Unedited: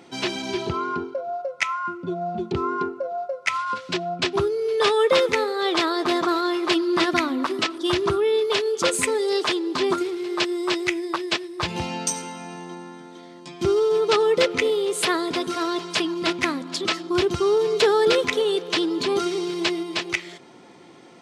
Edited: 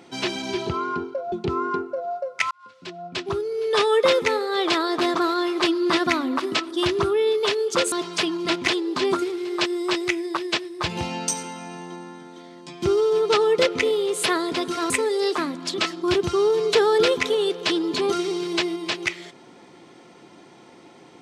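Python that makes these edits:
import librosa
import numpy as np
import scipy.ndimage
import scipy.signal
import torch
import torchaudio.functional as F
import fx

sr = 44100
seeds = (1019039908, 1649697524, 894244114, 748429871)

y = fx.edit(x, sr, fx.cut(start_s=1.32, length_s=1.07),
    fx.fade_in_span(start_s=3.58, length_s=1.34),
    fx.swap(start_s=8.99, length_s=0.48, other_s=15.69, other_length_s=0.76), tone=tone)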